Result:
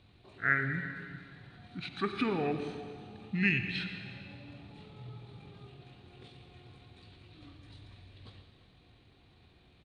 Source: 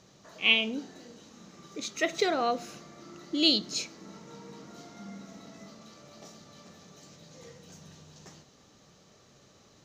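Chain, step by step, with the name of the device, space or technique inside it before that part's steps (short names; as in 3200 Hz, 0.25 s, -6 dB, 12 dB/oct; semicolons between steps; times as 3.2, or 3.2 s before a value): monster voice (pitch shift -8.5 st; low shelf 120 Hz +7.5 dB; reverb RT60 2.0 s, pre-delay 74 ms, DRR 7 dB); gain -5 dB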